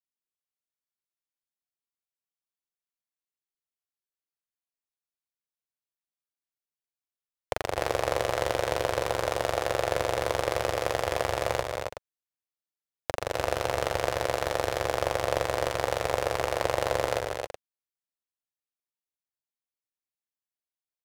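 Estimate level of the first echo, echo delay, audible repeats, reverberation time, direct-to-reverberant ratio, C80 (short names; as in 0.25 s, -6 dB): -16.0 dB, 0.12 s, 5, none, none, none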